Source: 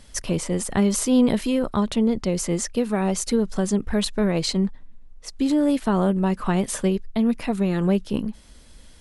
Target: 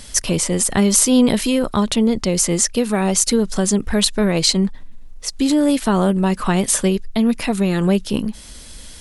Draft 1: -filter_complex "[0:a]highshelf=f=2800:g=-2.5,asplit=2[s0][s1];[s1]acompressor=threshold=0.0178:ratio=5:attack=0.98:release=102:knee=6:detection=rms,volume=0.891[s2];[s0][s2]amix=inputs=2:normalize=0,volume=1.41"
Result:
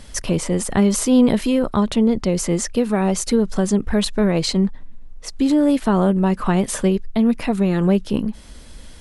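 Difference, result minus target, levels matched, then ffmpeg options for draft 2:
4 kHz band -5.5 dB
-filter_complex "[0:a]highshelf=f=2800:g=9,asplit=2[s0][s1];[s1]acompressor=threshold=0.0178:ratio=5:attack=0.98:release=102:knee=6:detection=rms,volume=0.891[s2];[s0][s2]amix=inputs=2:normalize=0,volume=1.41"

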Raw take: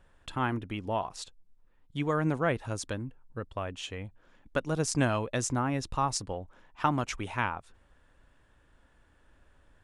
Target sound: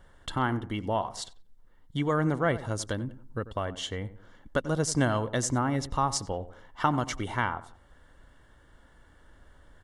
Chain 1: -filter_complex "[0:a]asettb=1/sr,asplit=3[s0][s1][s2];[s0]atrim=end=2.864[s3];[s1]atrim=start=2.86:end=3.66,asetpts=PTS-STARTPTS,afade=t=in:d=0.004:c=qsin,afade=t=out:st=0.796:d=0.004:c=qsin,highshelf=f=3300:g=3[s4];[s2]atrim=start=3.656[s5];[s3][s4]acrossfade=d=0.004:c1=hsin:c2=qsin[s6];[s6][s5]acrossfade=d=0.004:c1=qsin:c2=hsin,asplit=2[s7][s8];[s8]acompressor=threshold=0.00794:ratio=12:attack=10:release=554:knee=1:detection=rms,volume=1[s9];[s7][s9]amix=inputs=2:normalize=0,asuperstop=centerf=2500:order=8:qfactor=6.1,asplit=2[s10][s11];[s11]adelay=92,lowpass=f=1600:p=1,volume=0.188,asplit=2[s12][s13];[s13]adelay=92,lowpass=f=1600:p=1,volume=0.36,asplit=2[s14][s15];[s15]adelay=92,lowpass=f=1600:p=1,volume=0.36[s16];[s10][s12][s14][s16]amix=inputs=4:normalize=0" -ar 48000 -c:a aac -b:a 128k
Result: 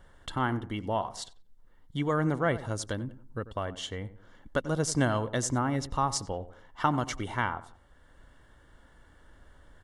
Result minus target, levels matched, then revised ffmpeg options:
compression: peak gain reduction +7.5 dB
-filter_complex "[0:a]asettb=1/sr,asplit=3[s0][s1][s2];[s0]atrim=end=2.864[s3];[s1]atrim=start=2.86:end=3.66,asetpts=PTS-STARTPTS,afade=t=in:d=0.004:c=qsin,afade=t=out:st=0.796:d=0.004:c=qsin,highshelf=f=3300:g=3[s4];[s2]atrim=start=3.656[s5];[s3][s4]acrossfade=d=0.004:c1=hsin:c2=qsin[s6];[s6][s5]acrossfade=d=0.004:c1=qsin:c2=hsin,asplit=2[s7][s8];[s8]acompressor=threshold=0.02:ratio=12:attack=10:release=554:knee=1:detection=rms,volume=1[s9];[s7][s9]amix=inputs=2:normalize=0,asuperstop=centerf=2500:order=8:qfactor=6.1,asplit=2[s10][s11];[s11]adelay=92,lowpass=f=1600:p=1,volume=0.188,asplit=2[s12][s13];[s13]adelay=92,lowpass=f=1600:p=1,volume=0.36,asplit=2[s14][s15];[s15]adelay=92,lowpass=f=1600:p=1,volume=0.36[s16];[s10][s12][s14][s16]amix=inputs=4:normalize=0" -ar 48000 -c:a aac -b:a 128k

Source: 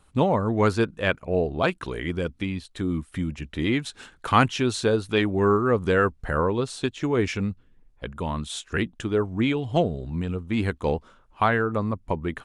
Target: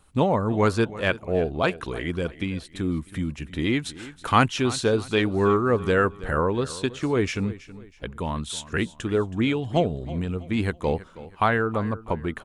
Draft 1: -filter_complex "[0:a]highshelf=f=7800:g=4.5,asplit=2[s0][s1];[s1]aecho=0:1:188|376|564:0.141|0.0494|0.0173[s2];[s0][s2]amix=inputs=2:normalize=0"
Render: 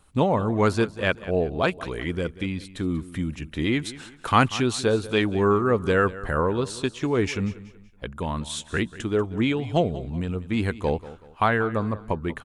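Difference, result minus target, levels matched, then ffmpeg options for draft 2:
echo 135 ms early
-filter_complex "[0:a]highshelf=f=7800:g=4.5,asplit=2[s0][s1];[s1]aecho=0:1:323|646|969:0.141|0.0494|0.0173[s2];[s0][s2]amix=inputs=2:normalize=0"

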